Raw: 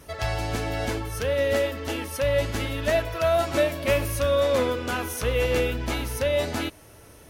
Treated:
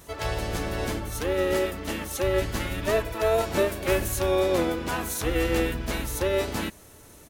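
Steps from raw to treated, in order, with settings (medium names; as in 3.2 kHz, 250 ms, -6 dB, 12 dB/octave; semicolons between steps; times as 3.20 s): harmony voices -7 st -1 dB, +7 st -16 dB; treble shelf 10 kHz +9.5 dB; trim -4 dB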